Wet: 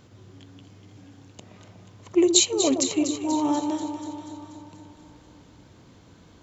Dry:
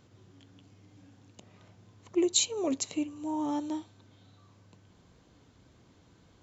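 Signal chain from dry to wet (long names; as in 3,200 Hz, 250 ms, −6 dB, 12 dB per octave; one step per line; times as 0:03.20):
delay that swaps between a low-pass and a high-pass 121 ms, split 1,100 Hz, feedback 78%, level −7 dB
level +7.5 dB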